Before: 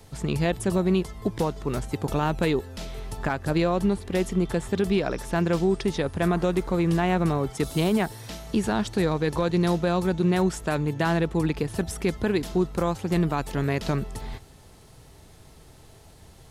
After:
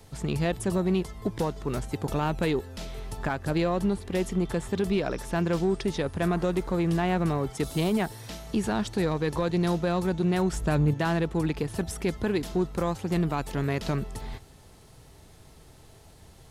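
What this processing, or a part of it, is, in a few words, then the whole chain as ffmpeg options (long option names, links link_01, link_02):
parallel distortion: -filter_complex "[0:a]asettb=1/sr,asplit=3[link_01][link_02][link_03];[link_01]atrim=end=10.524[link_04];[link_02]atrim=start=10.52:end=10.94,asetpts=PTS-STARTPTS,afade=type=in:duration=0.004:curve=qsin,afade=type=out:start_time=0.416:duration=0.004:curve=qsin,lowshelf=frequency=230:gain=11.5[link_05];[link_03]atrim=start=10.936[link_06];[link_04][link_05]acrossfade=duration=0.004:curve1=hsin:curve2=qsin[link_07];[link_07][link_06]acrossfade=duration=0.004:curve1=qsin:curve2=hsin,asplit=2[link_08][link_09];[link_09]asoftclip=type=hard:threshold=-22.5dB,volume=-7dB[link_10];[link_08][link_10]amix=inputs=2:normalize=0,volume=-5dB"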